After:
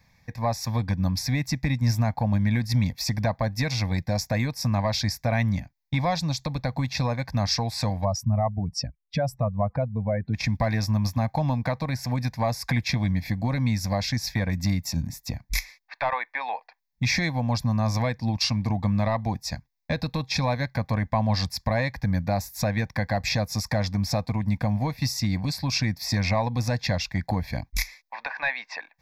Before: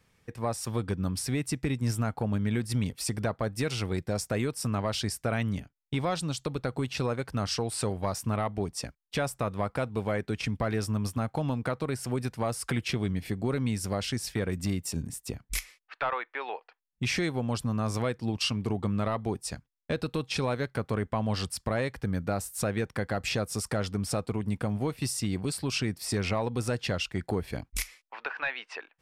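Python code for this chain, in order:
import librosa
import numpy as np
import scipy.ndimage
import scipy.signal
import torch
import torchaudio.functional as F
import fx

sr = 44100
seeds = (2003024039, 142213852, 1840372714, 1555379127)

y = fx.spec_expand(x, sr, power=1.9, at=(8.03, 10.33), fade=0.02)
y = fx.fixed_phaser(y, sr, hz=2000.0, stages=8)
y = y * 10.0 ** (8.0 / 20.0)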